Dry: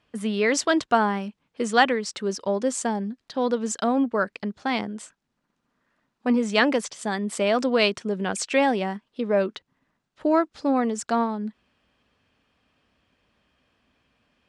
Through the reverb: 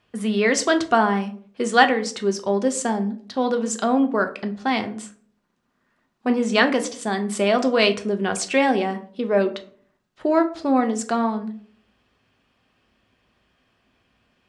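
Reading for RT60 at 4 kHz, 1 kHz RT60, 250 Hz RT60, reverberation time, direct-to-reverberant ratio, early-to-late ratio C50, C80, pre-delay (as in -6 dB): 0.30 s, 0.45 s, 0.60 s, 0.50 s, 6.0 dB, 14.5 dB, 18.5 dB, 3 ms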